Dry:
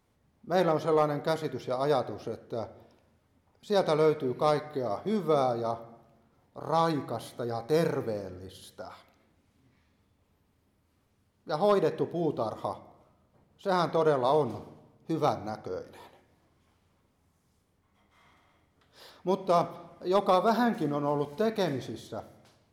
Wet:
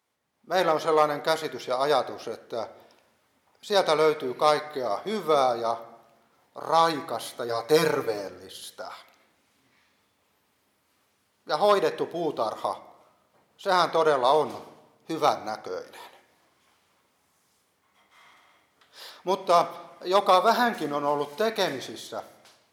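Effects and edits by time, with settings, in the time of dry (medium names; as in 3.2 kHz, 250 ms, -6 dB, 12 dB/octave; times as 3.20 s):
7.48–8.28 s: comb 6.8 ms, depth 91%
whole clip: high-pass 1 kHz 6 dB/octave; level rider gain up to 9.5 dB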